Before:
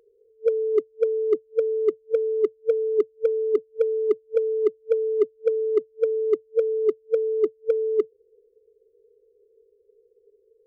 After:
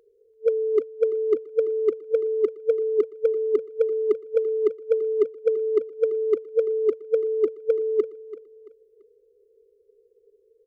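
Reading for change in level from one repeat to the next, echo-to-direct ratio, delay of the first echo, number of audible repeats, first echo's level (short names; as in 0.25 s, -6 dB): -9.5 dB, -15.5 dB, 0.337 s, 3, -16.0 dB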